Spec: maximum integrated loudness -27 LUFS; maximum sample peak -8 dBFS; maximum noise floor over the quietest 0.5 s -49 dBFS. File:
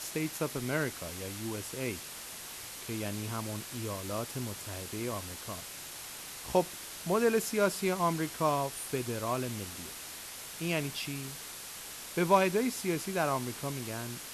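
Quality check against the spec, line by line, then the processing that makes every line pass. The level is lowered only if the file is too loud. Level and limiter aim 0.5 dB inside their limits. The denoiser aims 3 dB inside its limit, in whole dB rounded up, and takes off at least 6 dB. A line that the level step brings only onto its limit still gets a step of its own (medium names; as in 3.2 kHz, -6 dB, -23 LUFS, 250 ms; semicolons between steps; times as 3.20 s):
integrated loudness -34.0 LUFS: pass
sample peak -11.5 dBFS: pass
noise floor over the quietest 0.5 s -44 dBFS: fail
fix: noise reduction 8 dB, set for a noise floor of -44 dBFS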